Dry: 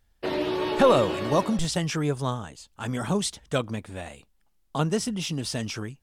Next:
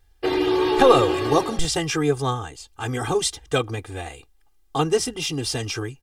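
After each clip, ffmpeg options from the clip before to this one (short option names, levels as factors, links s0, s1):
-af "aecho=1:1:2.5:1,volume=1.33"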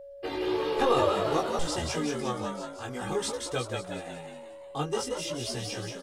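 -filter_complex "[0:a]asplit=8[s0][s1][s2][s3][s4][s5][s6][s7];[s1]adelay=179,afreqshift=77,volume=0.631[s8];[s2]adelay=358,afreqshift=154,volume=0.324[s9];[s3]adelay=537,afreqshift=231,volume=0.164[s10];[s4]adelay=716,afreqshift=308,volume=0.0841[s11];[s5]adelay=895,afreqshift=385,volume=0.0427[s12];[s6]adelay=1074,afreqshift=462,volume=0.0219[s13];[s7]adelay=1253,afreqshift=539,volume=0.0111[s14];[s0][s8][s9][s10][s11][s12][s13][s14]amix=inputs=8:normalize=0,flanger=delay=16.5:depth=4.5:speed=0.54,aeval=exprs='val(0)+0.0158*sin(2*PI*560*n/s)':c=same,volume=0.447"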